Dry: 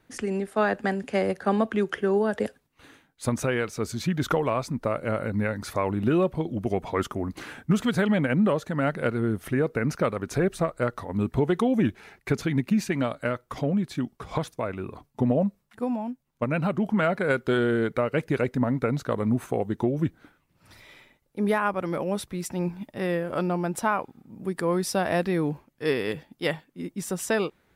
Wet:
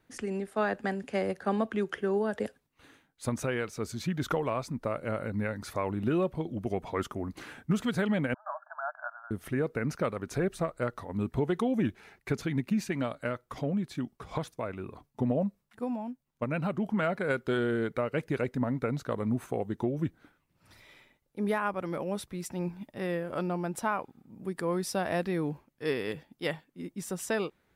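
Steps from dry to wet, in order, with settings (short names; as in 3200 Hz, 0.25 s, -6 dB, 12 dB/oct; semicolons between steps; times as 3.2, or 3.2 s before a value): 8.34–9.31 brick-wall FIR band-pass 600–1700 Hz; gain -5.5 dB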